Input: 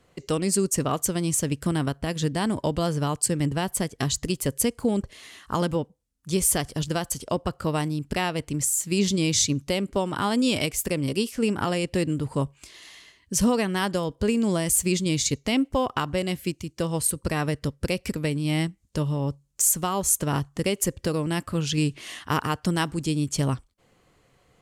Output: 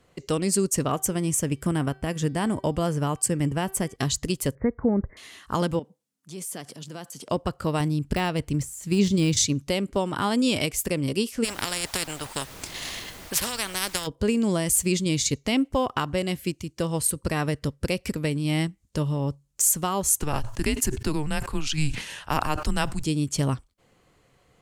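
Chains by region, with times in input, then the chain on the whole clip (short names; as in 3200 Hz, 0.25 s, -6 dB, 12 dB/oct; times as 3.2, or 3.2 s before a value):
0.91–3.96 bell 4100 Hz -11 dB 0.43 oct + de-hum 385 Hz, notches 13
4.55–5.17 steep low-pass 2100 Hz 96 dB/oct + low shelf 120 Hz +7 dB
5.79–7.29 compressor 3:1, threshold -34 dBFS + transient shaper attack -8 dB, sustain +2 dB + HPF 150 Hz 24 dB/oct
7.8–9.37 de-esser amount 65% + low shelf 140 Hz +8 dB
11.43–14.06 transient shaper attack +7 dB, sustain -9 dB + added noise pink -55 dBFS + spectral compressor 4:1
20.16–23.04 frequency shift -150 Hz + sustainer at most 100 dB/s
whole clip: dry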